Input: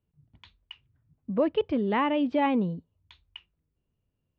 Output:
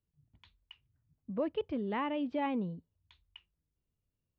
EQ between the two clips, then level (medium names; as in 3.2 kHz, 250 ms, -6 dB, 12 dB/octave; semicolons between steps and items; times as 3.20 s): bass shelf 70 Hz +5.5 dB; -9.0 dB